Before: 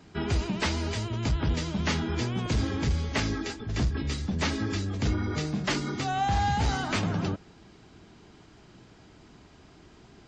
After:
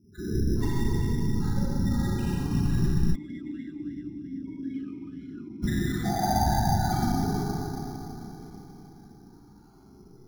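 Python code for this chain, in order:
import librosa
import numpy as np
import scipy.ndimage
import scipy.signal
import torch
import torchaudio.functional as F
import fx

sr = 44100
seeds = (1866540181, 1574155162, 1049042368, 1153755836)

y = fx.spec_dropout(x, sr, seeds[0], share_pct=26)
y = fx.whisperise(y, sr, seeds[1])
y = fx.spec_topn(y, sr, count=8)
y = y + 10.0 ** (-23.0 / 20.0) * np.pad(y, (int(1045 * sr / 1000.0), 0))[:len(y)]
y = fx.rev_schroeder(y, sr, rt60_s=3.7, comb_ms=30, drr_db=-10.0)
y = np.repeat(scipy.signal.resample_poly(y, 1, 8), 8)[:len(y)]
y = fx.vowel_sweep(y, sr, vowels='i-u', hz=fx.line((3.14, 3.9), (5.62, 1.6)), at=(3.14, 5.62), fade=0.02)
y = y * 10.0 ** (-4.0 / 20.0)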